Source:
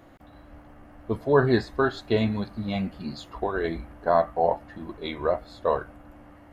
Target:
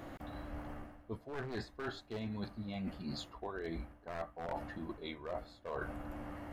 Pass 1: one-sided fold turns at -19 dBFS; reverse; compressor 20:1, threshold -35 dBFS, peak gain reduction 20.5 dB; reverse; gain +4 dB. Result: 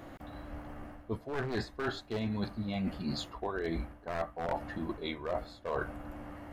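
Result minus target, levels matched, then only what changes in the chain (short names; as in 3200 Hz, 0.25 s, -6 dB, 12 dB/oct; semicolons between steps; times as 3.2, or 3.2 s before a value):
compressor: peak gain reduction -6.5 dB
change: compressor 20:1, threshold -42 dBFS, peak gain reduction 27 dB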